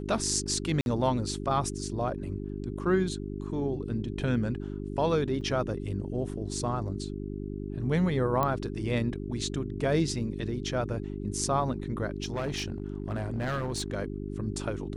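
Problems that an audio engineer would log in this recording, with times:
hum 50 Hz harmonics 8 -36 dBFS
0.81–0.86 gap 51 ms
5.41 gap 3.3 ms
8.43 pop -14 dBFS
12.22–13.95 clipped -27 dBFS

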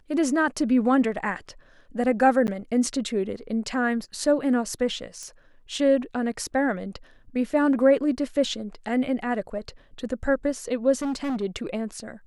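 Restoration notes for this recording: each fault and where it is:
2.47–2.48 gap 9.9 ms
5.23 pop -24 dBFS
10.96–11.43 clipped -24.5 dBFS

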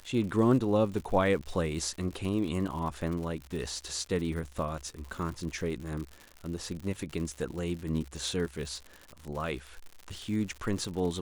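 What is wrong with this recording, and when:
crackle 120/s -37 dBFS

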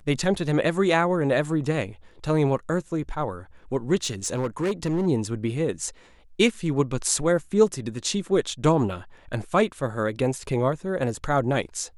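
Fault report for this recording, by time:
4.03–5.07 clipped -20.5 dBFS

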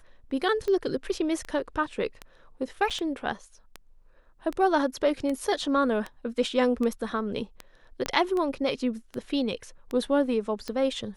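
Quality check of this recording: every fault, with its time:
tick 78 rpm -20 dBFS
2.9–2.91 gap 6.6 ms
8.06 pop -13 dBFS

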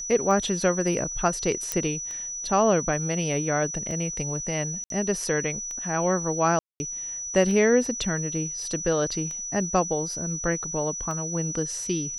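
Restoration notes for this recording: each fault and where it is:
tick 33 1/3 rpm -23 dBFS
tone 5900 Hz -31 dBFS
1.72 pop -10 dBFS
4.84–4.9 gap 62 ms
6.59–6.8 gap 0.21 s

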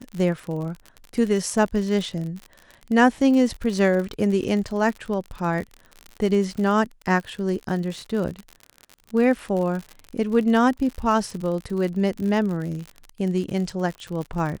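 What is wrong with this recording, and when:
crackle 57/s -29 dBFS

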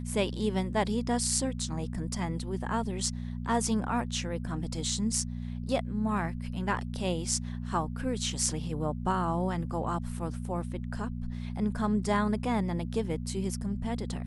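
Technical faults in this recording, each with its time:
hum 60 Hz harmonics 4 -36 dBFS

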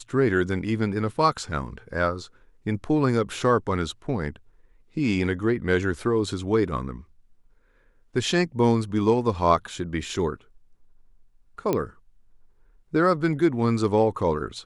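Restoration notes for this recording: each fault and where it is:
11.73 pop -11 dBFS

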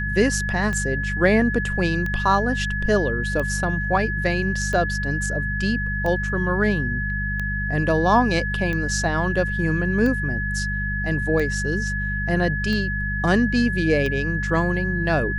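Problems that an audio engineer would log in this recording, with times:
hum 50 Hz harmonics 4 -27 dBFS
tick 45 rpm -16 dBFS
tone 1700 Hz -26 dBFS

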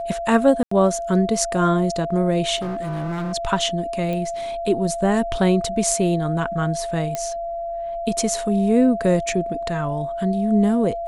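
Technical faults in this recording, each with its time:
tone 680 Hz -25 dBFS
0.63–0.71 gap 84 ms
2.56–3.34 clipped -23.5 dBFS
4.13 pop -16 dBFS
7.15 pop -11 dBFS

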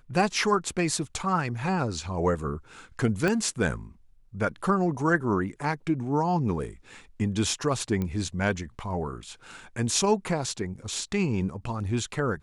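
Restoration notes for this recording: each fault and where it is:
3.28 pop -13 dBFS
8.02 pop -18 dBFS

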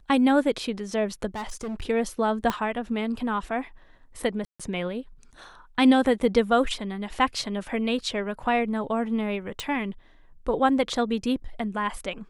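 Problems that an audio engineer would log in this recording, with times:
1.35–1.84 clipped -29 dBFS
2.5 pop -11 dBFS
4.45–4.6 gap 0.146 s
9.6 pop

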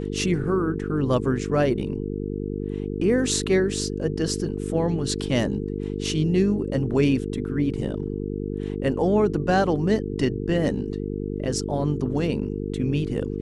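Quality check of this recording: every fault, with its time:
buzz 50 Hz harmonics 9 -29 dBFS

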